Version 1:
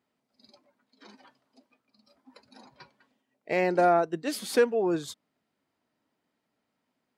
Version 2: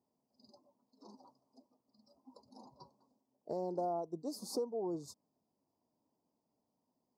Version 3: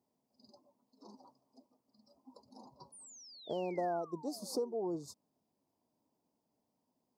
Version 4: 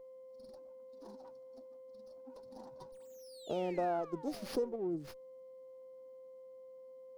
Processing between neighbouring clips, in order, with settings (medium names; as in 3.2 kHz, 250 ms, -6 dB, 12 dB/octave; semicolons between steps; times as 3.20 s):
elliptic band-stop 1–4.9 kHz, stop band 40 dB; peaking EQ 11 kHz -6 dB 1.4 oct; compression 2.5:1, threshold -37 dBFS, peak gain reduction 12.5 dB; trim -2.5 dB
painted sound fall, 2.92–4.74 s, 340–10000 Hz -56 dBFS; trim +1 dB
whistle 520 Hz -52 dBFS; time-frequency box 4.76–5.05 s, 410–7800 Hz -11 dB; sliding maximum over 5 samples; trim +1.5 dB